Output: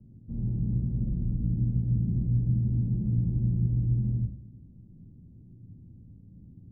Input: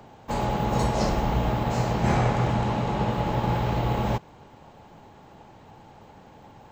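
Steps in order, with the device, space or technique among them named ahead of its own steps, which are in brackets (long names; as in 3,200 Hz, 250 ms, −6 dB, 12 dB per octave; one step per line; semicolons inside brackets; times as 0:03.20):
club heard from the street (brickwall limiter −21.5 dBFS, peak gain reduction 11 dB; low-pass filter 220 Hz 24 dB per octave; convolution reverb RT60 0.55 s, pre-delay 42 ms, DRR 0 dB)
level +1 dB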